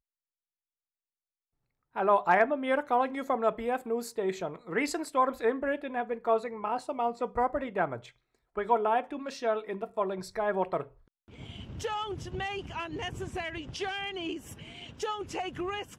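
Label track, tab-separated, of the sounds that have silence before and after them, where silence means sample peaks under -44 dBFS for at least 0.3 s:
1.950000	8.090000	sound
8.560000	10.870000	sound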